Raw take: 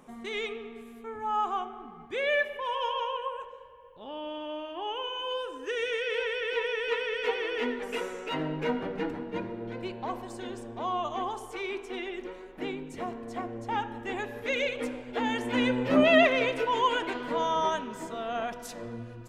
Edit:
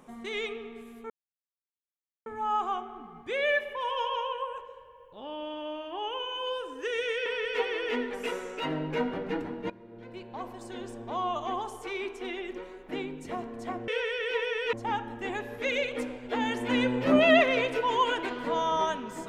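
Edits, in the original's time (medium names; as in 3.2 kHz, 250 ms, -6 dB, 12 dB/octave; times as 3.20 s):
1.10 s: insert silence 1.16 s
6.10–6.95 s: move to 13.57 s
9.39–10.69 s: fade in, from -16.5 dB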